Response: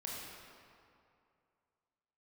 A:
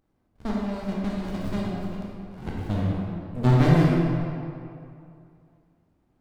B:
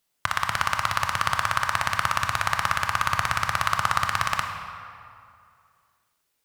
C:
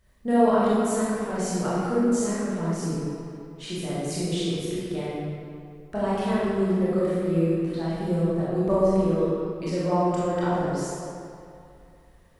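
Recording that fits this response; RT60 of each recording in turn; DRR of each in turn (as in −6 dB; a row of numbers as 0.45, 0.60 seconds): A; 2.5, 2.5, 2.5 seconds; −4.5, 4.5, −9.5 decibels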